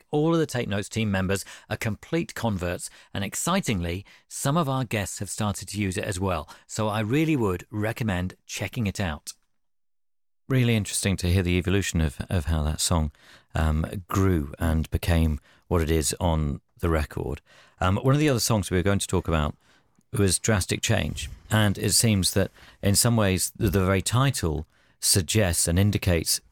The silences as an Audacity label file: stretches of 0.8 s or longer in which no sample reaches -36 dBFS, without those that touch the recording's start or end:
9.310000	10.490000	silence